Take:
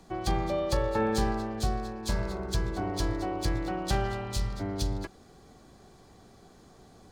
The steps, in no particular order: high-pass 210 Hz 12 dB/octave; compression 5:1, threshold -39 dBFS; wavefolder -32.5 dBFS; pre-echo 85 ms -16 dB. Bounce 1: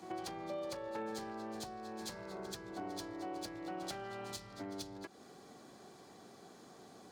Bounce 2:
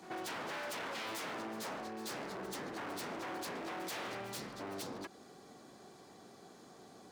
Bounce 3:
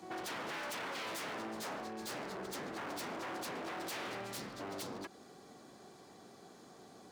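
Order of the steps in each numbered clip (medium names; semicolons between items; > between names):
pre-echo > compression > wavefolder > high-pass; wavefolder > pre-echo > compression > high-pass; pre-echo > wavefolder > compression > high-pass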